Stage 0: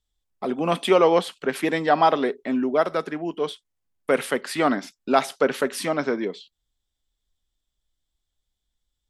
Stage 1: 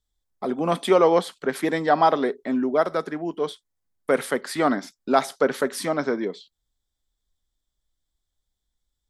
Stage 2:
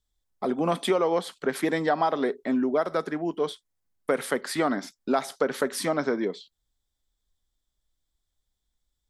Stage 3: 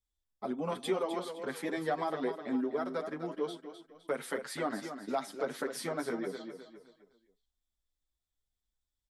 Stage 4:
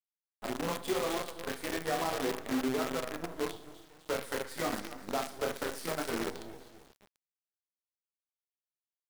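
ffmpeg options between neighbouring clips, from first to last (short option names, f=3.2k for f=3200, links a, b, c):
-af "equalizer=f=2.7k:w=3.3:g=-9"
-af "acompressor=threshold=-20dB:ratio=6"
-filter_complex "[0:a]asplit=2[a][b];[b]aecho=0:1:256|512|768|1024:0.355|0.131|0.0486|0.018[c];[a][c]amix=inputs=2:normalize=0,asplit=2[d][e];[e]adelay=7.6,afreqshift=3[f];[d][f]amix=inputs=2:normalize=1,volume=-6.5dB"
-af "aecho=1:1:30|69|119.7|185.6|271.3:0.631|0.398|0.251|0.158|0.1,acrusher=bits=6:dc=4:mix=0:aa=0.000001,volume=-2dB"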